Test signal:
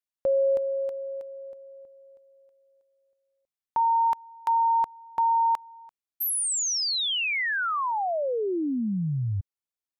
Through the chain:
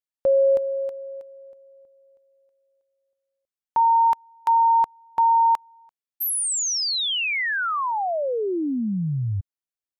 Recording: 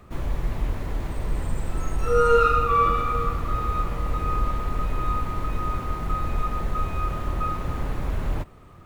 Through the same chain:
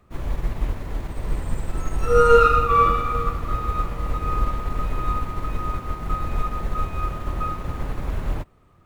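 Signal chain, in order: upward expander 1.5:1, over -41 dBFS; gain +5 dB

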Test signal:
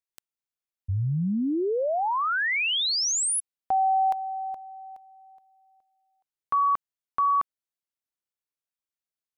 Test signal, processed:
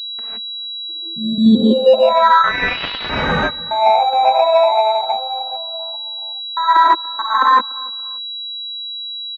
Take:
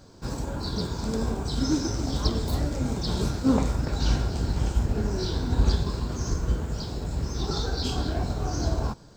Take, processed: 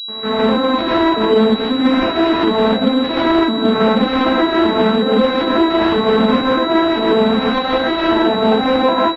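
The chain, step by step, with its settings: arpeggiated vocoder minor triad, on A3, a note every 0.386 s; HPF 200 Hz 12 dB/oct; tilt shelf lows -9 dB, about 790 Hz; reverse; compressor 20:1, threshold -41 dBFS; reverse; step gate ".xxxx.xx.xxx" 185 bpm -60 dB; vibrato 6.3 Hz 16 cents; on a send: feedback echo 0.289 s, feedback 37%, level -23 dB; on the sum: non-linear reverb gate 0.19 s rising, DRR -7.5 dB; maximiser +27.5 dB; pulse-width modulation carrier 3900 Hz; gain -2 dB

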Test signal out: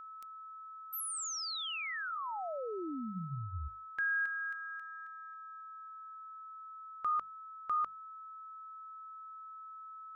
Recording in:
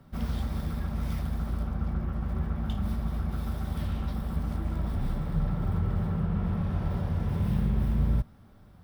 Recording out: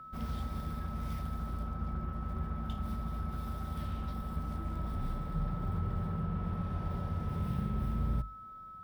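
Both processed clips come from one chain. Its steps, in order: notches 50/100/150/200 Hz; whine 1300 Hz -40 dBFS; gain -6 dB

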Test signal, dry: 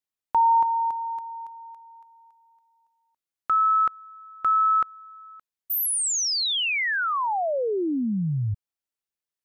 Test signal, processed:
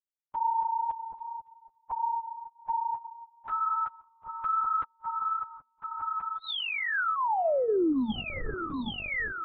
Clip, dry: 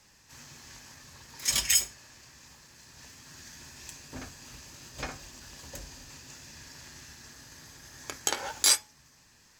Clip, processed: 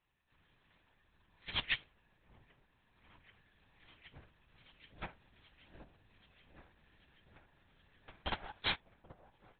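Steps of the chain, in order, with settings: repeats that get brighter 0.778 s, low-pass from 750 Hz, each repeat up 1 oct, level -3 dB; LPC vocoder at 8 kHz whisper; limiter -20.5 dBFS; de-hum 234.6 Hz, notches 5; upward expander 2.5:1, over -42 dBFS

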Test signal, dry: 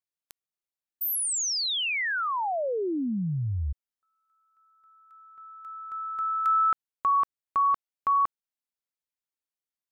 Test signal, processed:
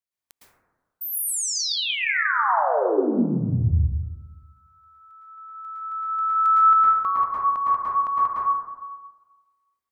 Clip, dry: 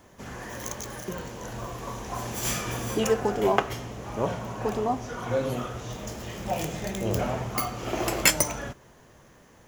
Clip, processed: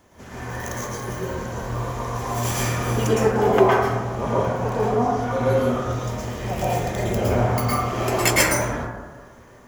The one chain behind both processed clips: plate-style reverb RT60 1.3 s, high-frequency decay 0.25×, pre-delay 0.1 s, DRR -8 dB; gain -2 dB

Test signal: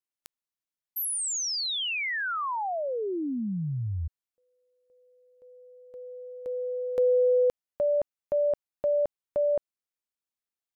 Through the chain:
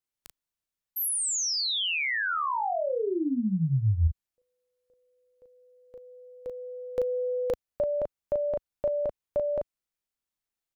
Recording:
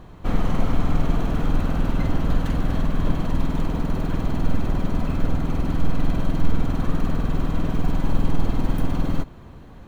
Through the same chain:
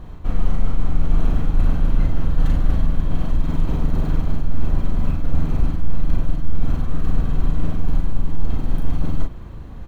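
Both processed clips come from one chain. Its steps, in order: low shelf 94 Hz +11 dB; reverse; compressor, threshold -13 dBFS; reverse; doubler 37 ms -3.5 dB

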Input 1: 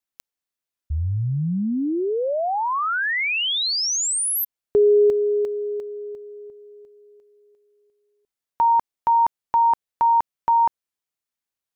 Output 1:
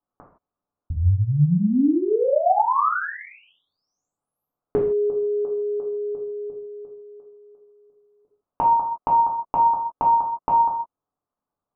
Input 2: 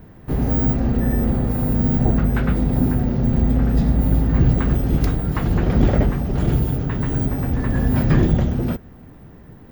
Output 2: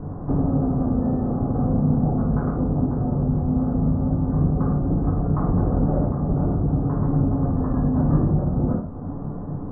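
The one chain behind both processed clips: elliptic low-pass 1200 Hz, stop band 70 dB; compressor 3:1, threshold -34 dBFS; non-linear reverb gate 0.19 s falling, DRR -3.5 dB; gain +8 dB

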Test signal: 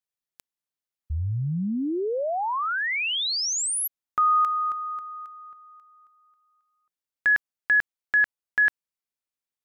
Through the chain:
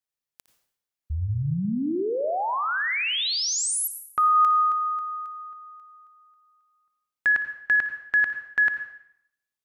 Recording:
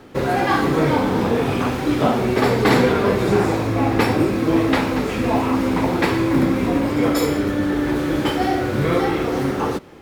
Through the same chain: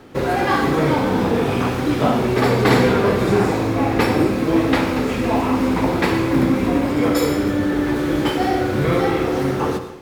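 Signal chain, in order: on a send: flutter echo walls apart 10.1 m, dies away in 0.23 s; on the sum: plate-style reverb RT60 0.71 s, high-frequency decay 0.95×, pre-delay 75 ms, DRR 10 dB

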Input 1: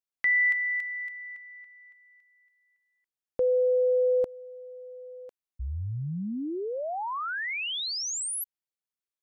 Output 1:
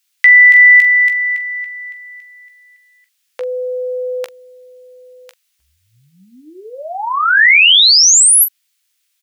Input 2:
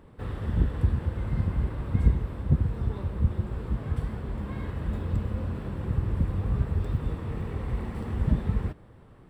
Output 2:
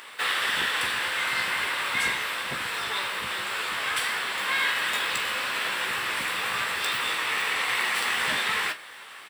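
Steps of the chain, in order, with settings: Chebyshev high-pass 2400 Hz, order 2; early reflections 16 ms -8 dB, 43 ms -13.5 dB; maximiser +29 dB; gain -1 dB

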